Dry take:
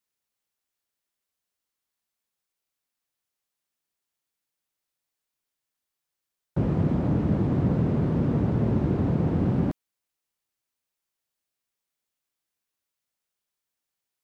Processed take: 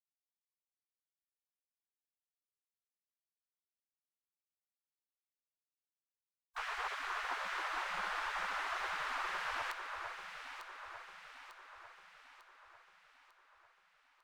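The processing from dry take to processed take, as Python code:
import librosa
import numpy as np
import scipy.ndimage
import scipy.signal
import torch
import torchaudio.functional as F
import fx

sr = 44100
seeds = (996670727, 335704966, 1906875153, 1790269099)

y = fx.spec_gate(x, sr, threshold_db=-30, keep='weak')
y = fx.echo_alternate(y, sr, ms=449, hz=1800.0, feedback_pct=72, wet_db=-4.5)
y = F.gain(torch.from_numpy(y), 9.0).numpy()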